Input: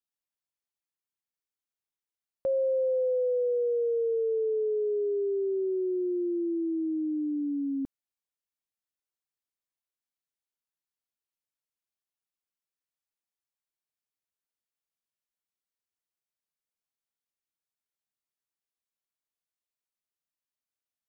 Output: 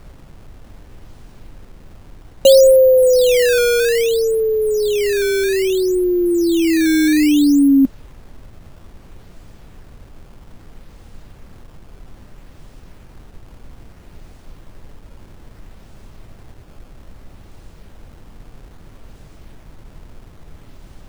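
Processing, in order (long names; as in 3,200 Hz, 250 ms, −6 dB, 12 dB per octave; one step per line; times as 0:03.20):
reversed playback
upward compression, threshold −46 dBFS
reversed playback
hollow resonant body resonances 240/570 Hz, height 15 dB, ringing for 30 ms
background noise brown −45 dBFS
sample-and-hold swept by an LFO 13×, swing 160% 0.61 Hz
level +7.5 dB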